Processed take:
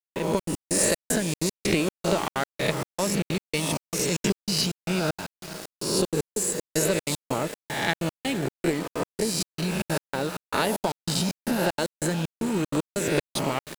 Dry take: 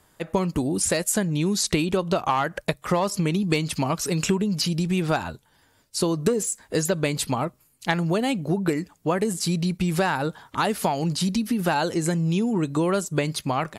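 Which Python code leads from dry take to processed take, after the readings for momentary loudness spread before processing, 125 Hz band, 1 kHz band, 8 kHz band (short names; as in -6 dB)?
4 LU, -5.0 dB, -5.0 dB, +0.5 dB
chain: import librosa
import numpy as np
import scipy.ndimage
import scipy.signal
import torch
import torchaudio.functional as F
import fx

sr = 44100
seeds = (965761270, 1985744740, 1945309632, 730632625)

p1 = fx.spec_swells(x, sr, rise_s=1.16)
p2 = fx.highpass(p1, sr, hz=110.0, slope=6)
p3 = fx.notch(p2, sr, hz=750.0, q=12.0)
p4 = fx.dynamic_eq(p3, sr, hz=1100.0, q=2.2, threshold_db=-36.0, ratio=4.0, max_db=-6)
p5 = p4 + fx.echo_diffused(p4, sr, ms=479, feedback_pct=56, wet_db=-13.5, dry=0)
p6 = fx.step_gate(p5, sr, bpm=191, pattern='..xxx.x..xxx', floor_db=-60.0, edge_ms=4.5)
p7 = fx.tube_stage(p6, sr, drive_db=10.0, bias=0.6)
y = np.where(np.abs(p7) >= 10.0 ** (-34.5 / 20.0), p7, 0.0)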